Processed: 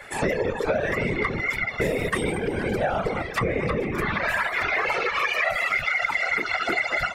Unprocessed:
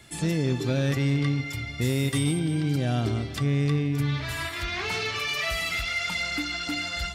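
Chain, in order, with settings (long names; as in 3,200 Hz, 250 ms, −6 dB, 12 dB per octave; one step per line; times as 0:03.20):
random phases in short frames
flat-topped bell 1,000 Hz +15.5 dB 2.8 octaves
downward compressor, threshold −19 dBFS, peak gain reduction 8.5 dB
reverb reduction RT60 1.1 s
delay that swaps between a low-pass and a high-pass 230 ms, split 1,200 Hz, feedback 52%, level −12.5 dB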